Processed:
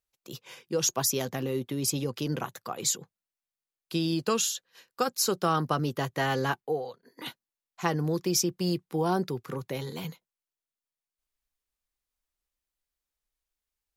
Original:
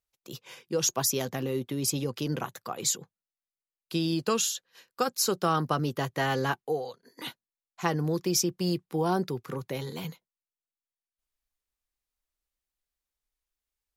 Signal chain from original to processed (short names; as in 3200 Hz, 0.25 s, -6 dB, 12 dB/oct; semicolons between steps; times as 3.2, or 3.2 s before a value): 6.6–7.26 bell 7200 Hz -9 dB 1.5 oct